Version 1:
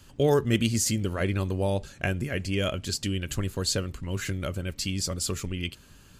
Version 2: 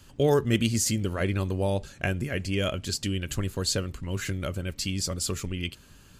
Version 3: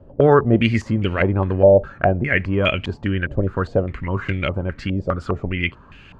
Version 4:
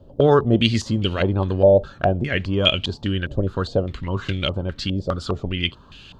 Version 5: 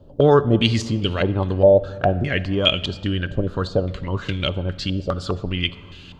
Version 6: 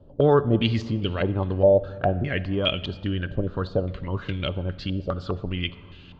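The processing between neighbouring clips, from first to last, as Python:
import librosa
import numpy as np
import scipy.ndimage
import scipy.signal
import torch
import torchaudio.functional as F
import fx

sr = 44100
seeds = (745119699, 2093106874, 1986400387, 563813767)

y1 = x
y2 = fx.filter_held_lowpass(y1, sr, hz=4.9, low_hz=580.0, high_hz=2500.0)
y2 = y2 * 10.0 ** (7.5 / 20.0)
y3 = fx.high_shelf_res(y2, sr, hz=2800.0, db=9.0, q=3.0)
y3 = y3 * 10.0 ** (-1.5 / 20.0)
y4 = fx.room_shoebox(y3, sr, seeds[0], volume_m3=2500.0, walls='mixed', distance_m=0.39)
y5 = fx.air_absorb(y4, sr, metres=190.0)
y5 = y5 * 10.0 ** (-3.5 / 20.0)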